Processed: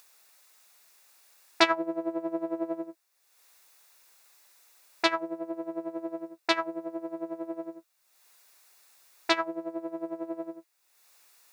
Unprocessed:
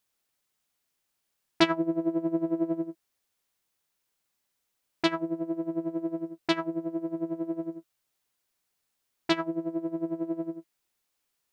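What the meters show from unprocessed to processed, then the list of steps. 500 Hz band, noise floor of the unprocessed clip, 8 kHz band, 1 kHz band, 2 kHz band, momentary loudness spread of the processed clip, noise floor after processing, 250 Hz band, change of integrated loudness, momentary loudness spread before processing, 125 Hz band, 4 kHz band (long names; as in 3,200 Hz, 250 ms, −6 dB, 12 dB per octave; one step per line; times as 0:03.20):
0.0 dB, −80 dBFS, can't be measured, +4.0 dB, +4.5 dB, 13 LU, −73 dBFS, −5.5 dB, −1.0 dB, 9 LU, −17.0 dB, +2.5 dB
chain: high-pass filter 570 Hz 12 dB per octave
notch filter 3,100 Hz, Q 7.6
upward compression, threshold −51 dBFS
level +4.5 dB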